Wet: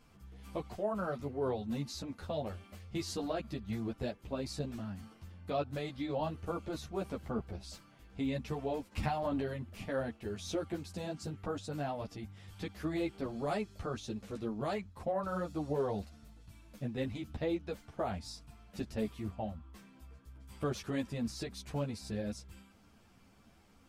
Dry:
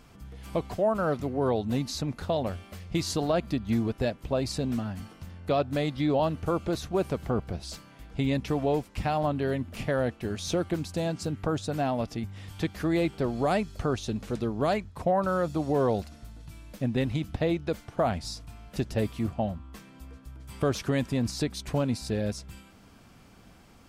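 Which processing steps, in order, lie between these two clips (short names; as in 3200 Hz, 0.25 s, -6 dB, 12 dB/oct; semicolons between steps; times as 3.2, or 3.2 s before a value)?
8.91–9.43 transient shaper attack +7 dB, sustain +11 dB; ensemble effect; gain -6 dB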